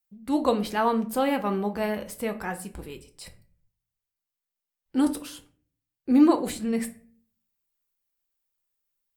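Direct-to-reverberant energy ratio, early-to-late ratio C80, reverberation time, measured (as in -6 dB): 5.5 dB, 19.5 dB, no single decay rate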